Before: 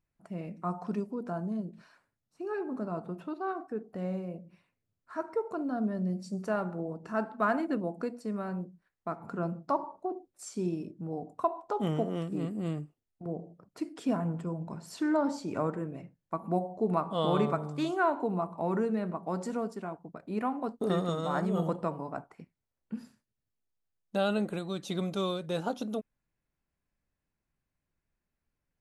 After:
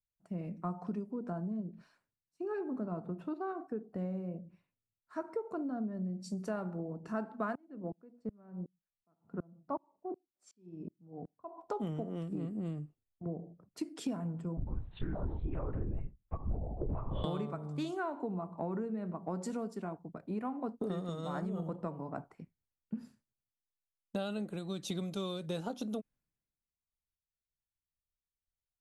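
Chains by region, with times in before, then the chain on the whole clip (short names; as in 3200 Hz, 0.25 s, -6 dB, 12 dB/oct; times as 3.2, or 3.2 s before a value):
7.55–11.58 LPF 1400 Hz 6 dB/oct + dB-ramp tremolo swelling 2.7 Hz, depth 32 dB
14.57–17.24 compressor 3:1, threshold -35 dBFS + LPC vocoder at 8 kHz whisper
whole clip: low shelf 400 Hz +7.5 dB; compressor 10:1, threshold -32 dBFS; three-band expander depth 70%; gain -2 dB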